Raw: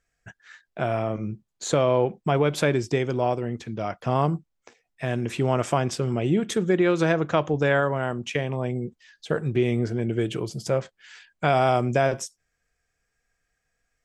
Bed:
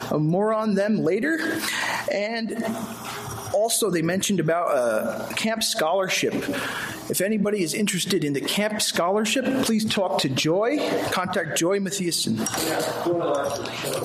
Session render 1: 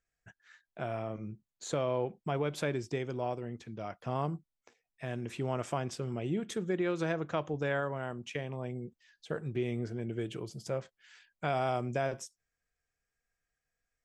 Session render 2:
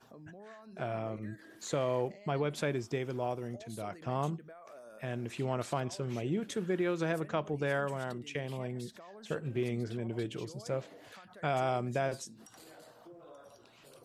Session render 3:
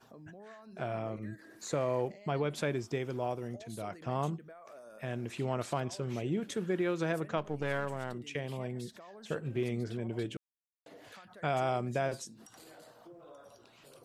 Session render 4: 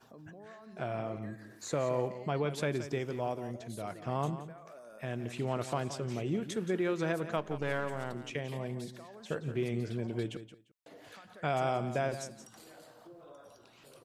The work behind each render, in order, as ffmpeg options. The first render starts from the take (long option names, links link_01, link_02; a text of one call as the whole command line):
ffmpeg -i in.wav -af "volume=-11dB" out.wav
ffmpeg -i in.wav -i bed.wav -filter_complex "[1:a]volume=-30dB[link_01];[0:a][link_01]amix=inputs=2:normalize=0" out.wav
ffmpeg -i in.wav -filter_complex "[0:a]asettb=1/sr,asplit=3[link_01][link_02][link_03];[link_01]atrim=end=1.354[link_04];[link_02]atrim=start=1.35:end=1.99,asetpts=PTS-STARTPTS,afade=type=in:duration=0.004:curve=qsin,afade=type=out:start_time=0.636:duration=0.004:curve=qsin,equalizer=frequency=3200:width=5.1:gain=-9.5[link_05];[link_03]atrim=start=1.986[link_06];[link_04][link_05]acrossfade=duration=0.004:curve1=hsin:curve2=qsin[link_07];[link_07][link_06]acrossfade=duration=0.004:curve1=qsin:curve2=hsin,asplit=3[link_08][link_09][link_10];[link_08]afade=type=out:start_time=7.37:duration=0.02[link_11];[link_09]aeval=exprs='if(lt(val(0),0),0.447*val(0),val(0))':channel_layout=same,afade=type=in:start_time=7.37:duration=0.02,afade=type=out:start_time=8.13:duration=0.02[link_12];[link_10]afade=type=in:start_time=8.13:duration=0.02[link_13];[link_11][link_12][link_13]amix=inputs=3:normalize=0,asplit=3[link_14][link_15][link_16];[link_14]atrim=end=10.37,asetpts=PTS-STARTPTS,afade=type=out:start_time=10.366:duration=0.004:curve=hsin[link_17];[link_15]atrim=start=10.37:end=10.86,asetpts=PTS-STARTPTS,volume=0[link_18];[link_16]atrim=start=10.86,asetpts=PTS-STARTPTS,afade=type=in:duration=0.004:curve=hsin[link_19];[link_17][link_18][link_19]concat=n=3:v=0:a=1" out.wav
ffmpeg -i in.wav -af "aecho=1:1:174|348:0.251|0.0452" out.wav